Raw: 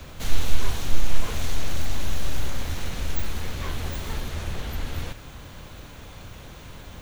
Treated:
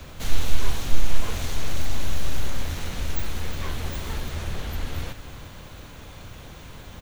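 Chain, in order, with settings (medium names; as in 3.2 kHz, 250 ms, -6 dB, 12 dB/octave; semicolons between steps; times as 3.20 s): delay 356 ms -13.5 dB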